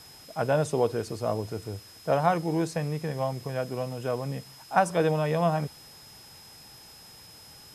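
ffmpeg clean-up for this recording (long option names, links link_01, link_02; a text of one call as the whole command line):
ffmpeg -i in.wav -af "bandreject=frequency=5100:width=30,afwtdn=0.0025" out.wav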